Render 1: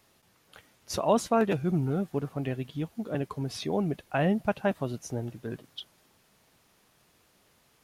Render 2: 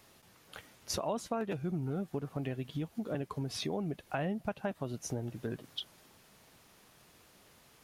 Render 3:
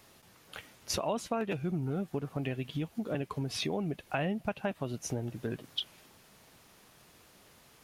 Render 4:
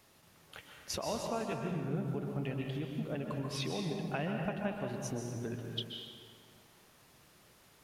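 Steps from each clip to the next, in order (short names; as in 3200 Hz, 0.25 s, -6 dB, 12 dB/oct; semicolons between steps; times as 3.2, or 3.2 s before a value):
compressor 4:1, threshold -38 dBFS, peak gain reduction 16.5 dB; gain +3.5 dB
dynamic EQ 2600 Hz, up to +6 dB, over -59 dBFS, Q 2; gain +2 dB
plate-style reverb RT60 2 s, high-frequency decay 0.65×, pre-delay 0.115 s, DRR 1.5 dB; gain -5 dB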